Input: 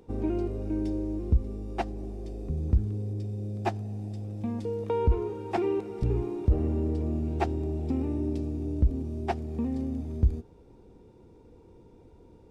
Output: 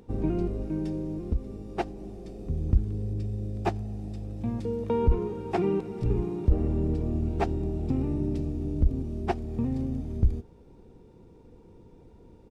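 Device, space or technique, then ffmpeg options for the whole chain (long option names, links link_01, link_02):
octave pedal: -filter_complex "[0:a]asplit=3[link_01][link_02][link_03];[link_01]afade=type=out:start_time=0.65:duration=0.02[link_04];[link_02]lowshelf=frequency=140:gain=-9.5,afade=type=in:start_time=0.65:duration=0.02,afade=type=out:start_time=2.46:duration=0.02[link_05];[link_03]afade=type=in:start_time=2.46:duration=0.02[link_06];[link_04][link_05][link_06]amix=inputs=3:normalize=0,asplit=2[link_07][link_08];[link_08]asetrate=22050,aresample=44100,atempo=2,volume=-4dB[link_09];[link_07][link_09]amix=inputs=2:normalize=0"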